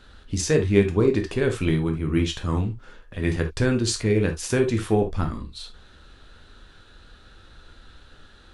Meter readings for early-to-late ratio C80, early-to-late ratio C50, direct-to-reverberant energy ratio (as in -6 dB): 26.5 dB, 11.0 dB, 3.5 dB